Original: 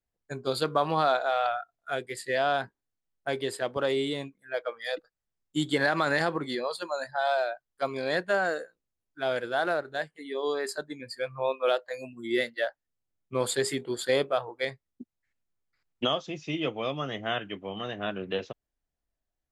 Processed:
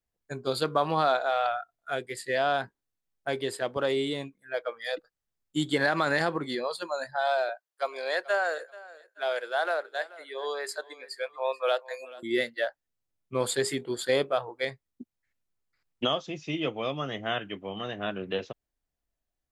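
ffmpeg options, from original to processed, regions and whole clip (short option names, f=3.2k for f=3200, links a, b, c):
-filter_complex "[0:a]asettb=1/sr,asplit=3[a][b][c];[a]atrim=end=7.494[d];[b]atrim=start=7.49:end=12.23,asetpts=PTS-STARTPTS,afade=t=in:d=0.004:c=qsin,afade=t=out:st=4.736:d=0.004:c=qsin,highpass=f=470:w=0.5412,highpass=f=470:w=1.3066,aecho=1:1:433|866:0.106|0.0297,atrim=end_sample=209034[e];[c]atrim=start=12.226[f];[d][e]acrossfade=d=0.004:c1=hsin:c2=qsin[g];[g][f]acrossfade=d=0.004:c1=qsin:c2=hsin"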